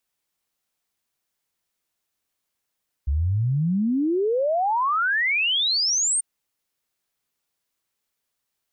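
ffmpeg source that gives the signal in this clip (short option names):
-f lavfi -i "aevalsrc='0.112*clip(min(t,3.14-t)/0.01,0,1)*sin(2*PI*66*3.14/log(9000/66)*(exp(log(9000/66)*t/3.14)-1))':d=3.14:s=44100"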